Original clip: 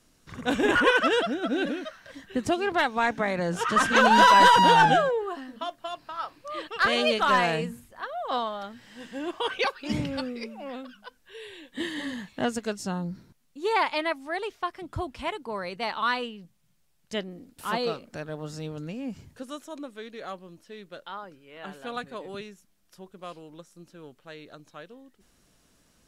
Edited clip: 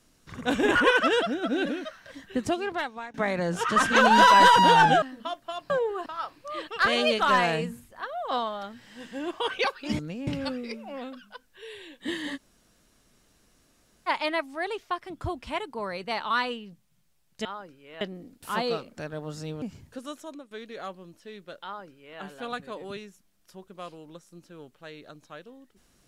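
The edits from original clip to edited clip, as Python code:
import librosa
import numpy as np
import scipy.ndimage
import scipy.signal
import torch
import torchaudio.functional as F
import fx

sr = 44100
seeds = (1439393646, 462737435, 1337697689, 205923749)

y = fx.edit(x, sr, fx.fade_out_to(start_s=2.37, length_s=0.77, floor_db=-23.0),
    fx.move(start_s=5.02, length_s=0.36, to_s=6.06),
    fx.room_tone_fill(start_s=12.08, length_s=1.72, crossfade_s=0.04),
    fx.move(start_s=18.78, length_s=0.28, to_s=9.99),
    fx.fade_out_to(start_s=19.68, length_s=0.27, floor_db=-13.5),
    fx.duplicate(start_s=21.08, length_s=0.56, to_s=17.17), tone=tone)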